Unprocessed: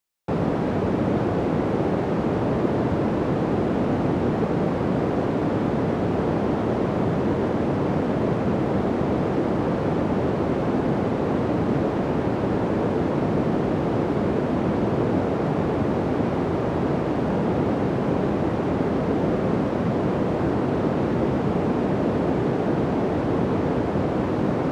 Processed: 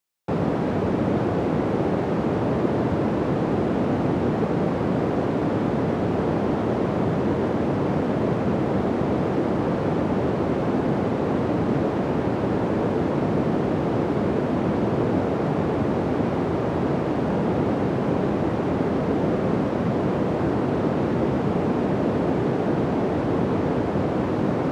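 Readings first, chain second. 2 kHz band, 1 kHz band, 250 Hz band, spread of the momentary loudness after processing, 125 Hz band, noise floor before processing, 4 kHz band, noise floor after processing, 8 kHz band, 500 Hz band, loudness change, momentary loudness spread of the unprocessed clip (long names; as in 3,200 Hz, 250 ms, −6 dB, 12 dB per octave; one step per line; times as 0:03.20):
0.0 dB, 0.0 dB, 0.0 dB, 1 LU, 0.0 dB, −25 dBFS, 0.0 dB, −25 dBFS, can't be measured, 0.0 dB, 0.0 dB, 1 LU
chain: high-pass filter 56 Hz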